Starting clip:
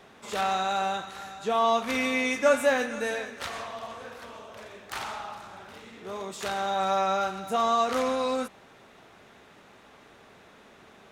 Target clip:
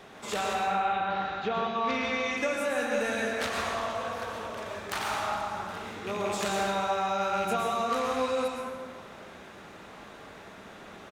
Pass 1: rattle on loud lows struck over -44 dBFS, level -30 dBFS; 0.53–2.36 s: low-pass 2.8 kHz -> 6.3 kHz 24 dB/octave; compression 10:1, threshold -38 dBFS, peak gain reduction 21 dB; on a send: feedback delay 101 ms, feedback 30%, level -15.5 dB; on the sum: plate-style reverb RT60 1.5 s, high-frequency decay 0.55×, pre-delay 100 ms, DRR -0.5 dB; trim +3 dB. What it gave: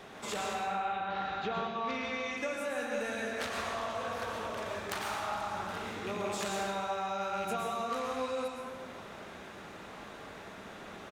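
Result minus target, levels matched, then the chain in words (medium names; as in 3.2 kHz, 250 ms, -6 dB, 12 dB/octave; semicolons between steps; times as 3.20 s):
compression: peak gain reduction +6.5 dB
rattle on loud lows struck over -44 dBFS, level -30 dBFS; 0.53–2.36 s: low-pass 2.8 kHz -> 6.3 kHz 24 dB/octave; compression 10:1, threshold -31 dBFS, peak gain reduction 15 dB; on a send: feedback delay 101 ms, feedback 30%, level -15.5 dB; on the sum: plate-style reverb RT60 1.5 s, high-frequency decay 0.55×, pre-delay 100 ms, DRR -0.5 dB; trim +3 dB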